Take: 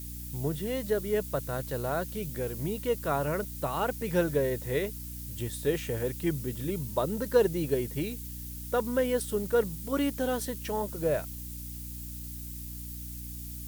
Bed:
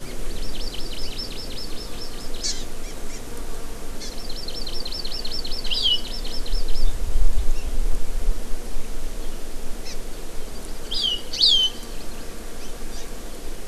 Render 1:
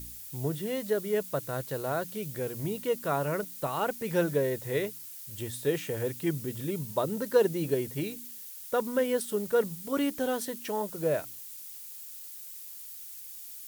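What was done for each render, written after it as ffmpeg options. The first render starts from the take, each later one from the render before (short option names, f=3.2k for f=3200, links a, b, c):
-af "bandreject=f=60:t=h:w=4,bandreject=f=120:t=h:w=4,bandreject=f=180:t=h:w=4,bandreject=f=240:t=h:w=4,bandreject=f=300:t=h:w=4"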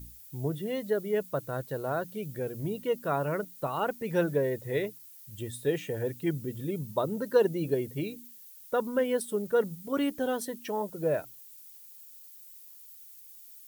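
-af "afftdn=nr=10:nf=-44"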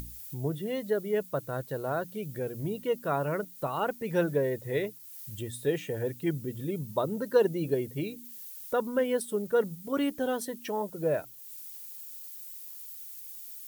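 -af "acompressor=mode=upward:threshold=-35dB:ratio=2.5"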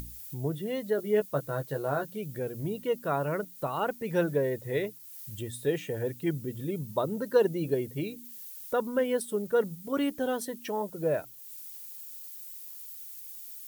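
-filter_complex "[0:a]asettb=1/sr,asplit=3[a][b][c];[a]atrim=end=0.974[d];[b]atrim=start=0.97:end=2.09,asetpts=PTS-STARTPTS,afade=t=in:d=0.004:c=qsin,afade=t=out:st=1.116:d=0.004:c=qsin,asplit=2[e][f];[f]adelay=14,volume=-5dB[g];[e][g]amix=inputs=2:normalize=0,atrim=end_sample=49392[h];[c]atrim=start=2.086[i];[d][h]acrossfade=d=0.004:c1=hsin:c2=qsin[j];[j][i]acrossfade=d=0.004:c1=qsin:c2=hsin"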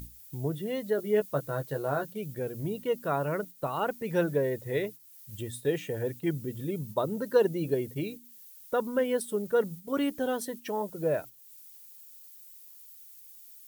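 -af "agate=range=-7dB:threshold=-41dB:ratio=16:detection=peak"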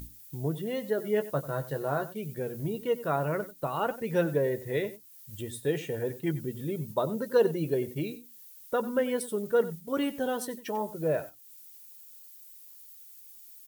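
-filter_complex "[0:a]asplit=2[a][b];[b]adelay=13,volume=-12dB[c];[a][c]amix=inputs=2:normalize=0,asplit=2[d][e];[e]adelay=93.29,volume=-16dB,highshelf=f=4k:g=-2.1[f];[d][f]amix=inputs=2:normalize=0"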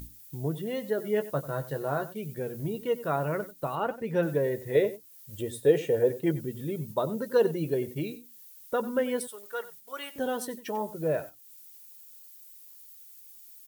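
-filter_complex "[0:a]asettb=1/sr,asplit=3[a][b][c];[a]atrim=end=3.754[d];[b]atrim=start=3.75:end=4.23,asetpts=PTS-STARTPTS,afade=t=in:d=0.004:c=qsin,afade=t=out:st=0.476:d=0.004:c=qsin,highshelf=f=3.9k:g=-9[e];[c]atrim=start=4.226[f];[d][e]acrossfade=d=0.004:c1=hsin:c2=qsin[g];[g][f]acrossfade=d=0.004:c1=qsin:c2=hsin,asettb=1/sr,asplit=3[h][i][j];[h]atrim=end=4.754[k];[i]atrim=start=4.75:end=6.41,asetpts=PTS-STARTPTS,afade=t=in:d=0.004:c=qsin,afade=t=out:st=1.656:d=0.004:c=qsin,equalizer=f=510:t=o:w=1:g=10[l];[j]atrim=start=6.406[m];[k][l]acrossfade=d=0.004:c1=hsin:c2=qsin[n];[n][m]acrossfade=d=0.004:c1=qsin:c2=hsin,asettb=1/sr,asplit=3[o][p][q];[o]atrim=end=9.274[r];[p]atrim=start=9.27:end=10.16,asetpts=PTS-STARTPTS,afade=t=in:d=0.004:c=qsin,afade=t=out:st=0.886:d=0.004:c=qsin,highpass=980[s];[q]atrim=start=10.156[t];[r][s]acrossfade=d=0.004:c1=hsin:c2=qsin[u];[u][t]acrossfade=d=0.004:c1=qsin:c2=hsin"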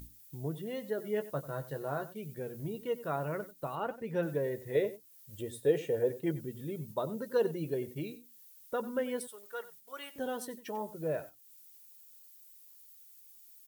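-af "volume=-6dB"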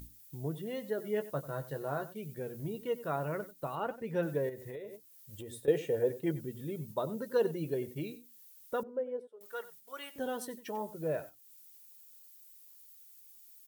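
-filter_complex "[0:a]asettb=1/sr,asplit=3[a][b][c];[a]atrim=end=4.494[d];[b]atrim=start=4.49:end=5.68,asetpts=PTS-STARTPTS,afade=t=in:d=0.004:c=qsin,afade=t=out:st=1.186:d=0.004:c=qsin,acompressor=threshold=-40dB:ratio=8:attack=3.2:release=140:knee=1:detection=peak[e];[c]atrim=start=5.676[f];[d][e]acrossfade=d=0.004:c1=hsin:c2=qsin[g];[g][f]acrossfade=d=0.004:c1=qsin:c2=hsin,asettb=1/sr,asplit=3[h][i][j];[h]atrim=end=8.834[k];[i]atrim=start=8.83:end=9.41,asetpts=PTS-STARTPTS,afade=t=in:d=0.004:c=qsin,afade=t=out:st=0.576:d=0.004:c=qsin,bandpass=f=460:t=q:w=2.4[l];[j]atrim=start=9.406[m];[k][l]acrossfade=d=0.004:c1=hsin:c2=qsin[n];[n][m]acrossfade=d=0.004:c1=qsin:c2=hsin"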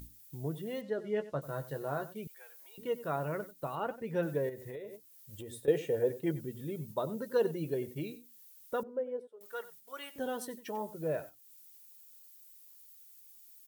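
-filter_complex "[0:a]asettb=1/sr,asplit=3[a][b][c];[a]atrim=end=0.814[d];[b]atrim=start=0.81:end=1.42,asetpts=PTS-STARTPTS,afade=t=in:d=0.004:c=qsin,afade=t=out:st=0.606:d=0.004:c=qsin,lowpass=5.2k[e];[c]atrim=start=1.416[f];[d][e]acrossfade=d=0.004:c1=hsin:c2=qsin[g];[g][f]acrossfade=d=0.004:c1=qsin:c2=hsin,asettb=1/sr,asplit=3[h][i][j];[h]atrim=end=2.274[k];[i]atrim=start=2.27:end=2.78,asetpts=PTS-STARTPTS,afade=t=in:d=0.004:c=qsin,afade=t=out:st=0.506:d=0.004:c=qsin,highpass=f=900:w=0.5412,highpass=f=900:w=1.3066[l];[j]atrim=start=2.776[m];[k][l]acrossfade=d=0.004:c1=hsin:c2=qsin[n];[n][m]acrossfade=d=0.004:c1=qsin:c2=hsin"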